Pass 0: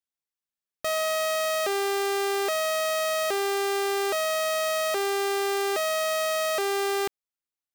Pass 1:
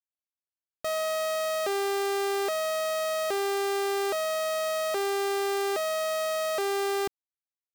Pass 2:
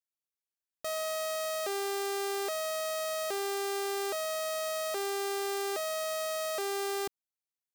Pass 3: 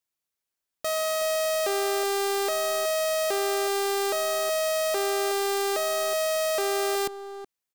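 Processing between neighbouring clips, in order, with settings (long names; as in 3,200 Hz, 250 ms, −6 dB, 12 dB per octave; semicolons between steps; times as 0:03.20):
running median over 25 samples; level −1 dB
bass and treble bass −3 dB, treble +5 dB; level −5.5 dB
far-end echo of a speakerphone 370 ms, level −8 dB; level +7 dB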